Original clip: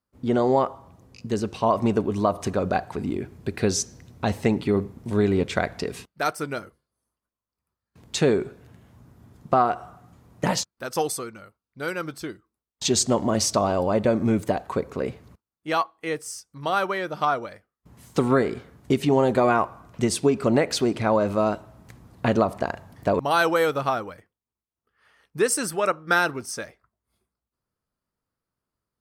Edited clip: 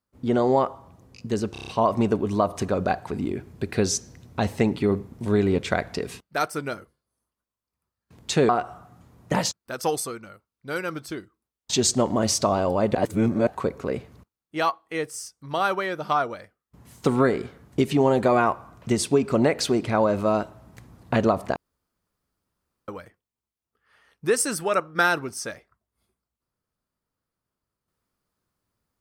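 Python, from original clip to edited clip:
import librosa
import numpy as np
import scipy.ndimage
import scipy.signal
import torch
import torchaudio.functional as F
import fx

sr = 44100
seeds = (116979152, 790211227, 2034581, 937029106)

y = fx.edit(x, sr, fx.stutter(start_s=1.52, slice_s=0.03, count=6),
    fx.cut(start_s=8.34, length_s=1.27),
    fx.reverse_span(start_s=14.07, length_s=0.52),
    fx.room_tone_fill(start_s=22.68, length_s=1.32), tone=tone)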